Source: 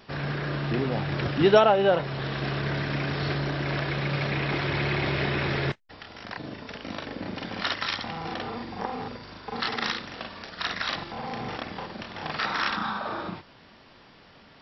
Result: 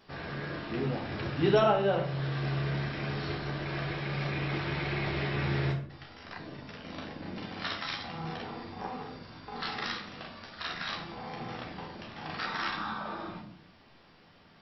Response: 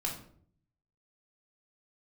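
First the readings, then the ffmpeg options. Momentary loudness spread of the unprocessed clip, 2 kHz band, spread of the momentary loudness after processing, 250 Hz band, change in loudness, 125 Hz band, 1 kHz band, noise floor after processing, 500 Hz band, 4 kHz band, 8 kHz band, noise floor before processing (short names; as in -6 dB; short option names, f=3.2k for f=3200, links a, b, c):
14 LU, -6.5 dB, 14 LU, -5.0 dB, -5.5 dB, -3.5 dB, -6.0 dB, -58 dBFS, -6.0 dB, -6.5 dB, n/a, -53 dBFS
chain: -filter_complex "[0:a]asplit=2[a][b];[1:a]atrim=start_sample=2205,adelay=12[c];[b][c]afir=irnorm=-1:irlink=0,volume=-3.5dB[d];[a][d]amix=inputs=2:normalize=0,volume=-9dB"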